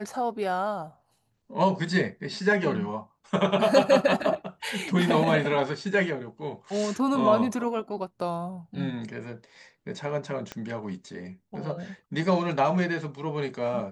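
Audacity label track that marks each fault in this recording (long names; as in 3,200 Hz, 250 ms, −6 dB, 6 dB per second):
10.520000	10.520000	click −20 dBFS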